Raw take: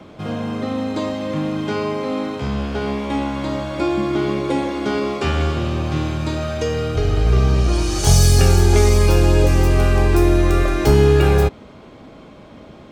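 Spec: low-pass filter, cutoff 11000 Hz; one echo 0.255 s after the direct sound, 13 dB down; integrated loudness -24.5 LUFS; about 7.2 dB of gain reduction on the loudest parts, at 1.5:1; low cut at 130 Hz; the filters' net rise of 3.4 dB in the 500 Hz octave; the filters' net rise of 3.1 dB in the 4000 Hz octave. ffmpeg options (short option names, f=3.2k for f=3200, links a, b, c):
-af "highpass=130,lowpass=11k,equalizer=f=500:t=o:g=4.5,equalizer=f=4k:t=o:g=4,acompressor=threshold=-29dB:ratio=1.5,aecho=1:1:255:0.224,volume=-1dB"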